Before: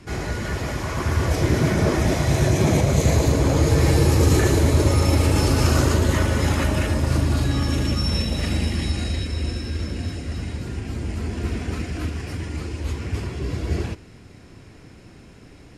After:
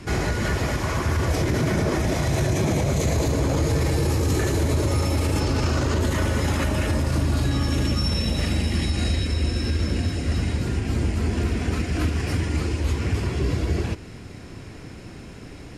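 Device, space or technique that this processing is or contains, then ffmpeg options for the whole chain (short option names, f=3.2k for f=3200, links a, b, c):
stacked limiters: -filter_complex "[0:a]asettb=1/sr,asplit=3[a][b][c];[a]atrim=end=5.404[d];[b]atrim=start=5.4:end=6.01,asetpts=PTS-STARTPTS,afade=t=in:d=0.004:c=qsin,afade=t=out:st=0.606:d=0.004:c=qsin,acrossover=split=7200[e][f];[f]acompressor=threshold=-50dB:ratio=4:attack=1:release=60[g];[e][g]amix=inputs=2:normalize=0[h];[c]atrim=start=6.006[i];[d][h]acrossfade=d=0.004:c1=hsin:c2=qsin[j];[j][i]acrossfade=d=0.004:c1=qsin:c2=hsin,alimiter=limit=-13dB:level=0:latency=1:release=34,alimiter=limit=-20dB:level=0:latency=1:release=251,volume=6dB"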